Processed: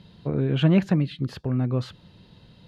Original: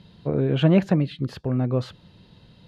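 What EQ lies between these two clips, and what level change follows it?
dynamic equaliser 570 Hz, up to −6 dB, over −36 dBFS, Q 1.1
0.0 dB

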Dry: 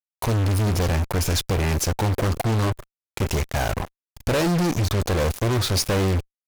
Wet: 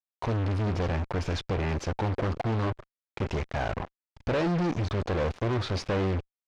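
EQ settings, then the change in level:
high-frequency loss of the air 130 metres
low-shelf EQ 120 Hz −5.5 dB
high-shelf EQ 5,000 Hz −9 dB
−4.0 dB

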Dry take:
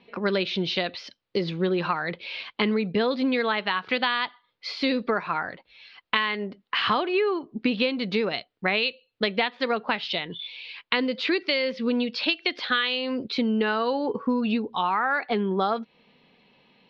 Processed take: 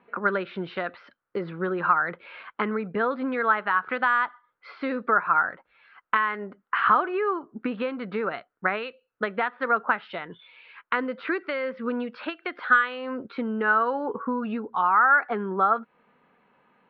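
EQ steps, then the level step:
low-pass with resonance 1,400 Hz, resonance Q 4.4
low-shelf EQ 180 Hz −6 dB
−3.0 dB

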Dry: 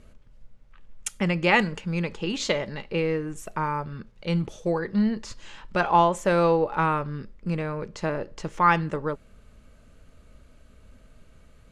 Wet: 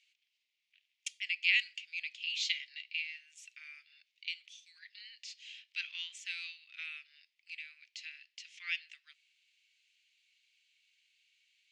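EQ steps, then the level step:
Butterworth high-pass 2,300 Hz 48 dB per octave
high-frequency loss of the air 140 metres
+2.0 dB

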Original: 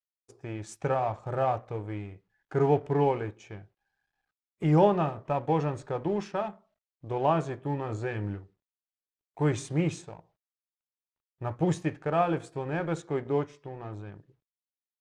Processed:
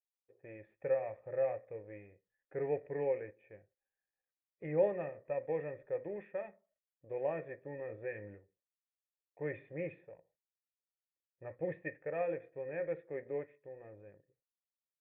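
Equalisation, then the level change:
dynamic equaliser 2,100 Hz, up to +8 dB, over −54 dBFS, Q 2.3
formant resonators in series e
0.0 dB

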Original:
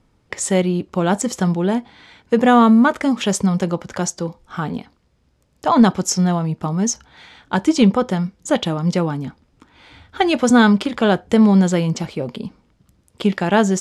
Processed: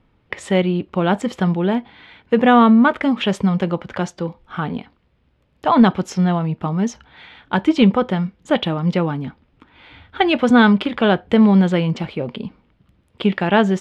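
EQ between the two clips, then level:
high shelf with overshoot 4,500 Hz −13.5 dB, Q 1.5
0.0 dB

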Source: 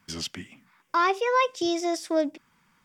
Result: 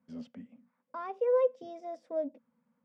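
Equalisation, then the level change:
pair of resonant band-passes 350 Hz, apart 1.1 octaves
+2.0 dB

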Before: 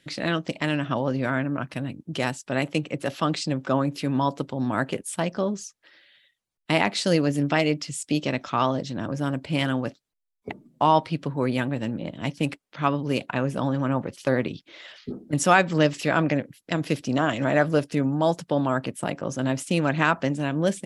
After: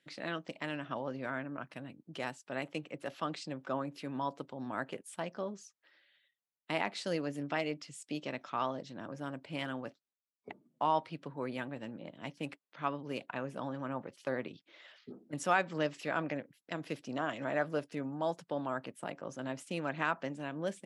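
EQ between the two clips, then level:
high-pass filter 120 Hz
low-shelf EQ 390 Hz −9 dB
high-shelf EQ 2,900 Hz −8.5 dB
−8.5 dB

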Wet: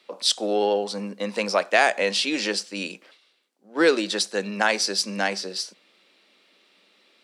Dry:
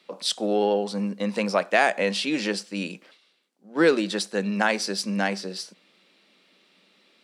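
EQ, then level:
high-pass filter 280 Hz 12 dB per octave
dynamic equaliser 5,600 Hz, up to +5 dB, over −42 dBFS, Q 0.78
+1.0 dB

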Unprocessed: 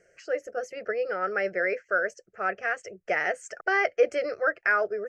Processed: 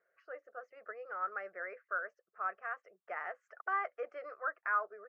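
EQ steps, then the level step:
resonant band-pass 1,100 Hz, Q 6.5
high-frequency loss of the air 130 metres
+2.5 dB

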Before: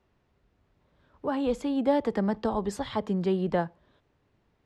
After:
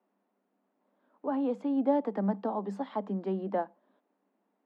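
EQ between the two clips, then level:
Chebyshev high-pass with heavy ripple 190 Hz, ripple 6 dB
low-pass filter 1,200 Hz 6 dB per octave
0.0 dB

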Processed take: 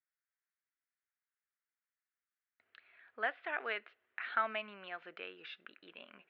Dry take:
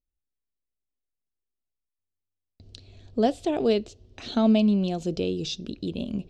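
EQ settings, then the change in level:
flat-topped band-pass 1,700 Hz, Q 2.1
high-frequency loss of the air 380 metres
+13.0 dB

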